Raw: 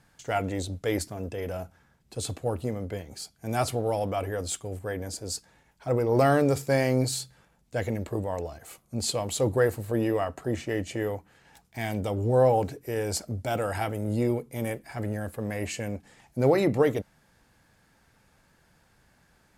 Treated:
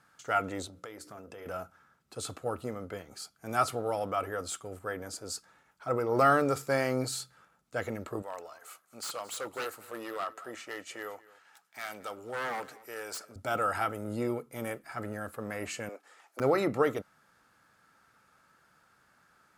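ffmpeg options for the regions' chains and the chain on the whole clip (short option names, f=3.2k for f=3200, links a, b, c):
-filter_complex "[0:a]asettb=1/sr,asplit=3[a][b][c];[a]atrim=end=0.674[d];[b]atrim=start=0.67:end=1.46,asetpts=PTS-STARTPTS,afade=t=in:d=0.004:c=qsin,afade=t=out:st=0.786:d=0.004:c=qsin,highpass=f=97:p=1,bandreject=f=60:t=h:w=6,bandreject=f=120:t=h:w=6,bandreject=f=180:t=h:w=6,bandreject=f=240:t=h:w=6,bandreject=f=300:t=h:w=6,bandreject=f=360:t=h:w=6,bandreject=f=420:t=h:w=6,bandreject=f=480:t=h:w=6,bandreject=f=540:t=h:w=6,acompressor=threshold=-37dB:ratio=8:attack=3.2:release=140:knee=1:detection=peak[e];[c]atrim=start=1.456[f];[d][e]acrossfade=d=0.004:c1=hsin:c2=qsin[g];[g][f]acrossfade=d=0.004:c1=qsin:c2=hsin,asettb=1/sr,asplit=3[h][i][j];[h]atrim=end=8.224[k];[i]atrim=start=8.22:end=13.36,asetpts=PTS-STARTPTS,afade=t=in:d=0.004:c=qsin,afade=t=out:st=5.136:d=0.004:c=qsin,highpass=f=1k:p=1,aeval=exprs='0.0447*(abs(mod(val(0)/0.0447+3,4)-2)-1)':c=same,aecho=1:1:222:0.1,atrim=end_sample=226674[l];[j]atrim=start=13.356[m];[k][l]acrossfade=d=0.004:c1=hsin:c2=qsin[n];[n][m]acrossfade=d=0.004:c1=qsin:c2=hsin,asettb=1/sr,asplit=3[o][p][q];[o]atrim=end=15.894[r];[p]atrim=start=15.89:end=16.4,asetpts=PTS-STARTPTS,afade=t=in:d=0.004:c=qsin,afade=t=out:st=0.506:d=0.004:c=qsin,highpass=f=370:w=0.5412,highpass=f=370:w=1.3066,aeval=exprs='(mod(22.4*val(0)+1,2)-1)/22.4':c=same[s];[q]atrim=start=16.396[t];[r][s]acrossfade=d=0.004:c1=hsin:c2=qsin[u];[u][t]acrossfade=d=0.004:c1=qsin:c2=hsin,equalizer=f=1.3k:t=o:w=0.36:g=14.5,deesser=0.5,highpass=f=230:p=1,volume=-4dB"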